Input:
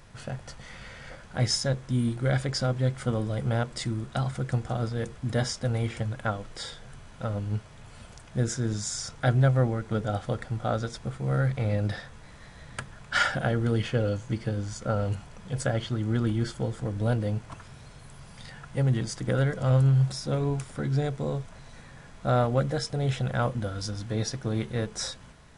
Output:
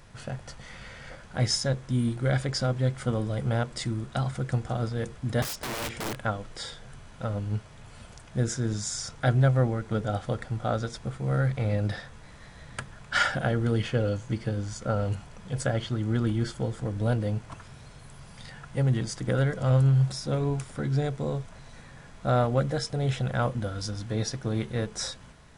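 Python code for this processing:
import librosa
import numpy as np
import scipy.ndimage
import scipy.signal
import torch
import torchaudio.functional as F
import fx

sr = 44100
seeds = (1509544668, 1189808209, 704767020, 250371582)

y = fx.overflow_wrap(x, sr, gain_db=28.0, at=(5.42, 6.19))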